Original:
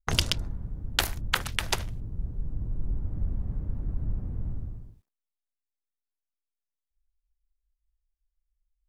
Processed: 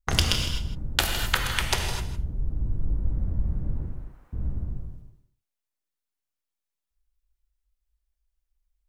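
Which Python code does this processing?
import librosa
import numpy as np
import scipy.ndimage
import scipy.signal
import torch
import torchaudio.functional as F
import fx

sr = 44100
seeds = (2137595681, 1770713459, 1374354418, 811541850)

y = fx.highpass(x, sr, hz=1200.0, slope=12, at=(3.86, 4.33))
y = y + 10.0 ** (-13.0 / 20.0) * np.pad(y, (int(159 * sr / 1000.0), 0))[:len(y)]
y = fx.rev_gated(y, sr, seeds[0], gate_ms=280, shape='flat', drr_db=2.5)
y = y * librosa.db_to_amplitude(1.5)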